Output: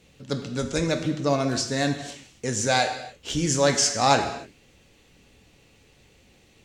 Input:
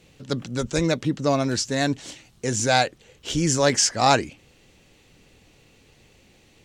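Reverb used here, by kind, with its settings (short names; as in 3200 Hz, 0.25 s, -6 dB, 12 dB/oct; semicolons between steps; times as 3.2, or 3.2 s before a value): non-linear reverb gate 0.32 s falling, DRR 5 dB; gain -2.5 dB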